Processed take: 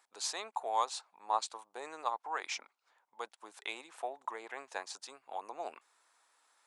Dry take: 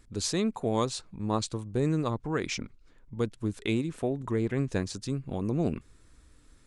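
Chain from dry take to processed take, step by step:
four-pole ladder high-pass 730 Hz, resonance 60%
level +5.5 dB

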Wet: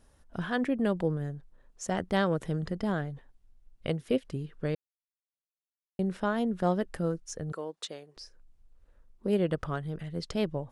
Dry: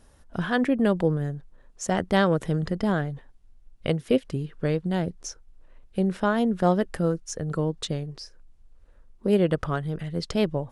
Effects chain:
0:04.75–0:05.99: silence
0:07.52–0:08.17: high-pass filter 460 Hz 12 dB per octave
level −6 dB

